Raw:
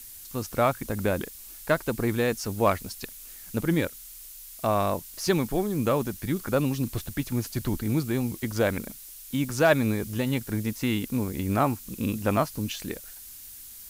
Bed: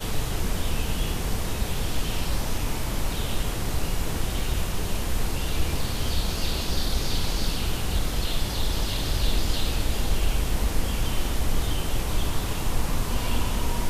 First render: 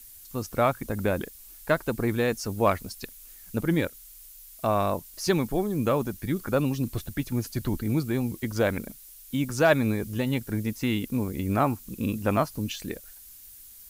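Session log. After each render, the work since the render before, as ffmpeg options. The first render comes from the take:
-af "afftdn=nr=6:nf=-45"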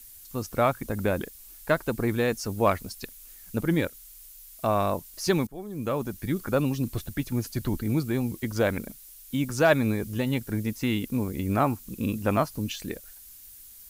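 -filter_complex "[0:a]asplit=2[a][b];[a]atrim=end=5.47,asetpts=PTS-STARTPTS,afade=t=out:st=5.466:d=0.004:c=hsin:silence=0.1[c];[b]atrim=start=5.47,asetpts=PTS-STARTPTS,afade=t=in:d=0.76:silence=0.1[d];[c][d]concat=n=2:v=0:a=1"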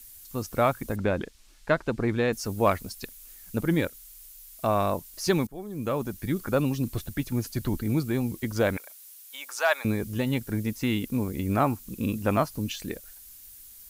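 -filter_complex "[0:a]asettb=1/sr,asplit=3[a][b][c];[a]atrim=end=0.964[d];[b]atrim=start=0.96:end=2.33,asetpts=PTS-STARTPTS,afade=t=in:d=0.004:c=qsin,afade=t=out:st=1.366:d=0.004:c=qsin,lowpass=5.1k[e];[c]atrim=start=2.326[f];[d][e]acrossfade=d=0.004:c1=hsin:c2=qsin[g];[g][f]acrossfade=d=0.004:c1=qsin:c2=hsin,asettb=1/sr,asplit=3[h][i][j];[h]atrim=end=8.774[k];[i]atrim=start=8.77:end=9.85,asetpts=PTS-STARTPTS,afade=t=in:d=0.004:c=qsin,afade=t=out:st=1.076:d=0.004:c=qsin,highpass=f=700:w=0.5412,highpass=f=700:w=1.3066[l];[j]atrim=start=9.846[m];[k][l]acrossfade=d=0.004:c1=hsin:c2=qsin[n];[n][m]acrossfade=d=0.004:c1=qsin:c2=hsin"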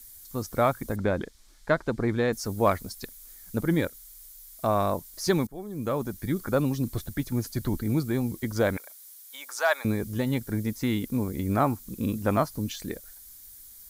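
-af "equalizer=f=2.7k:w=5.2:g=-10"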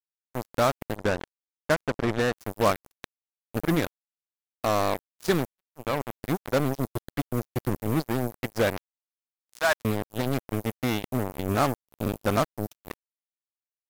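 -af "acrusher=bits=3:mix=0:aa=0.5"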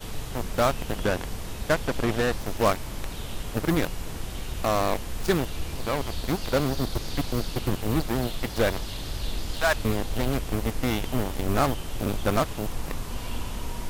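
-filter_complex "[1:a]volume=-7dB[a];[0:a][a]amix=inputs=2:normalize=0"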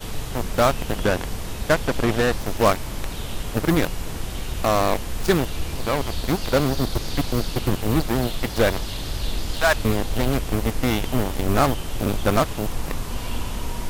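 -af "volume=4.5dB"

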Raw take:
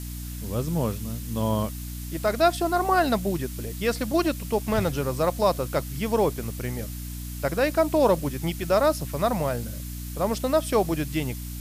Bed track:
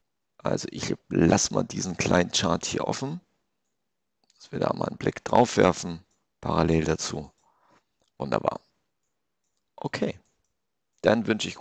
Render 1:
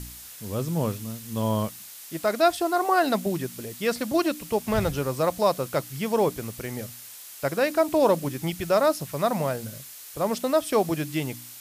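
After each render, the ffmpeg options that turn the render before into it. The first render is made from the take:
-af "bandreject=f=60:t=h:w=4,bandreject=f=120:t=h:w=4,bandreject=f=180:t=h:w=4,bandreject=f=240:t=h:w=4,bandreject=f=300:t=h:w=4"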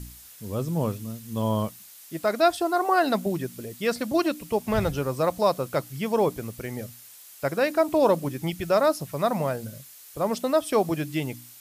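-af "afftdn=nr=6:nf=-43"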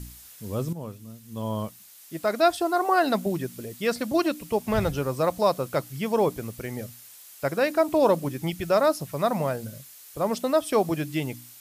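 -filter_complex "[0:a]asplit=2[a][b];[a]atrim=end=0.73,asetpts=PTS-STARTPTS,afade=t=out:st=0.726:d=0.004:c=hsin:silence=0.251189[c];[b]atrim=start=0.73,asetpts=PTS-STARTPTS,afade=t=in:d=1.74:silence=0.251189[d];[c][d]concat=n=2:v=0:a=1"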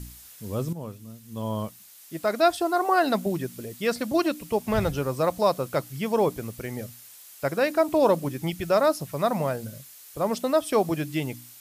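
-af anull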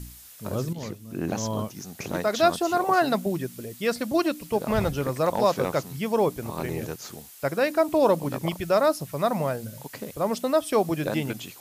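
-filter_complex "[1:a]volume=-9.5dB[a];[0:a][a]amix=inputs=2:normalize=0"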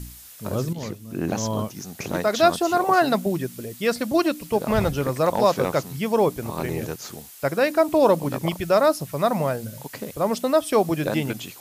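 -af "volume=3dB"

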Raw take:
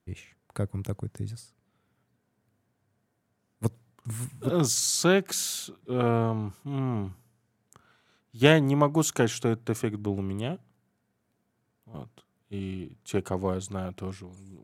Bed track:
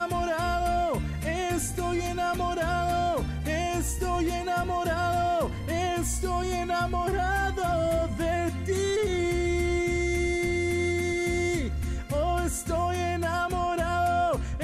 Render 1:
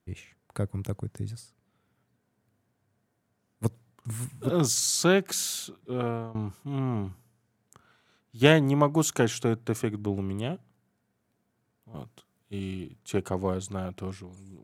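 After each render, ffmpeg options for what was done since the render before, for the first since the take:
-filter_complex "[0:a]asettb=1/sr,asplit=3[a][b][c];[a]atrim=end=11.974[d];[b]atrim=start=11.97:end=12.99,asetpts=PTS-STARTPTS,afade=t=in:d=0.004:c=qsin,afade=t=out:st=1.016:d=0.004:c=qsin,highshelf=f=3.5k:g=6.5[e];[c]atrim=start=12.986[f];[d][e]acrossfade=d=0.004:c1=hsin:c2=qsin[g];[g][f]acrossfade=d=0.004:c1=qsin:c2=hsin,asplit=2[h][i];[h]atrim=end=6.35,asetpts=PTS-STARTPTS,afade=t=out:st=5.77:d=0.58:silence=0.125893[j];[i]atrim=start=6.35,asetpts=PTS-STARTPTS,afade=t=in:d=0.004:c=hsin:silence=0.125893[k];[j][k]concat=n=2:v=0:a=1"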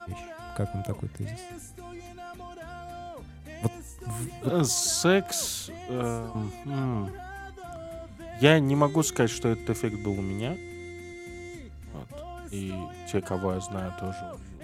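-filter_complex "[1:a]volume=-14.5dB[a];[0:a][a]amix=inputs=2:normalize=0"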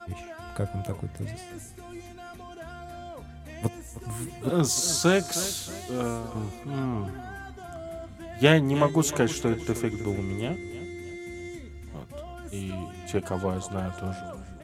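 -filter_complex "[0:a]asplit=2[a][b];[b]adelay=12,volume=-10.5dB[c];[a][c]amix=inputs=2:normalize=0,aecho=1:1:312|624|936|1248:0.178|0.0711|0.0285|0.0114"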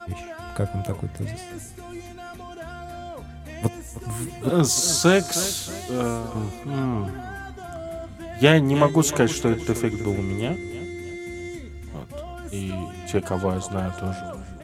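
-af "volume=4.5dB,alimiter=limit=-2dB:level=0:latency=1"

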